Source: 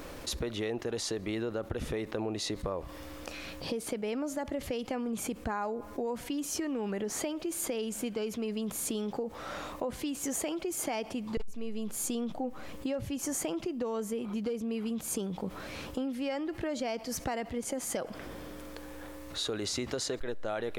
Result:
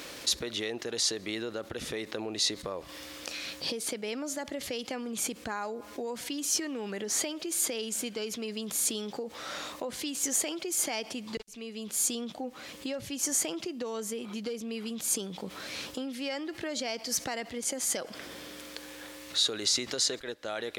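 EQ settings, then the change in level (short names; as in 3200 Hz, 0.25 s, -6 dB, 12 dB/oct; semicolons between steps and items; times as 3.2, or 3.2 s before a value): high shelf 5900 Hz +5.5 dB; dynamic EQ 2700 Hz, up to -6 dB, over -56 dBFS, Q 1.6; weighting filter D; -1.5 dB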